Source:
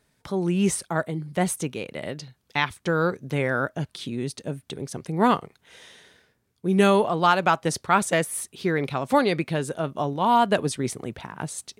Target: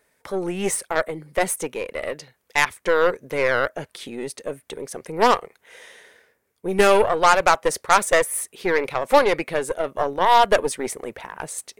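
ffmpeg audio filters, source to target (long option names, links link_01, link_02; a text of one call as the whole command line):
ffmpeg -i in.wav -af "equalizer=frequency=125:width_type=o:width=1:gain=-5,equalizer=frequency=500:width_type=o:width=1:gain=12,equalizer=frequency=1000:width_type=o:width=1:gain=5,equalizer=frequency=2000:width_type=o:width=1:gain=10,equalizer=frequency=4000:width_type=o:width=1:gain=-3,aeval=exprs='1.58*(cos(1*acos(clip(val(0)/1.58,-1,1)))-cos(1*PI/2))+0.126*(cos(8*acos(clip(val(0)/1.58,-1,1)))-cos(8*PI/2))':channel_layout=same,crystalizer=i=2:c=0,volume=-6dB" out.wav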